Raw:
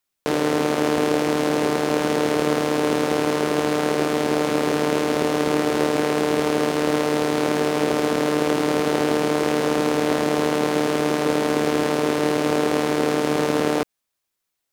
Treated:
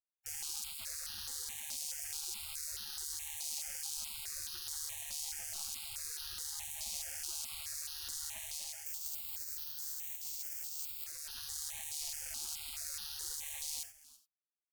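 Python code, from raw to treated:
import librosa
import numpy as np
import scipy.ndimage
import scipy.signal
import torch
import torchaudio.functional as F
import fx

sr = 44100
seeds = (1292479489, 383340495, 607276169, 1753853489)

y = 10.0 ** (-20.5 / 20.0) * np.tanh(x / 10.0 ** (-20.5 / 20.0))
y = fx.notch(y, sr, hz=850.0, q=12.0)
y = y + 10.0 ** (-19.0 / 20.0) * np.pad(y, (int(334 * sr / 1000.0), 0))[:len(y)]
y = fx.resample_bad(y, sr, factor=4, down='none', up='zero_stuff', at=(8.86, 11.04))
y = fx.rider(y, sr, range_db=4, speed_s=0.5)
y = fx.spec_gate(y, sr, threshold_db=-30, keep='weak')
y = fx.band_shelf(y, sr, hz=1800.0, db=-9.5, octaves=2.4)
y = fx.rev_gated(y, sr, seeds[0], gate_ms=110, shape='flat', drr_db=5.5)
y = fx.phaser_held(y, sr, hz=4.7, low_hz=410.0, high_hz=2200.0)
y = y * 10.0 ** (2.5 / 20.0)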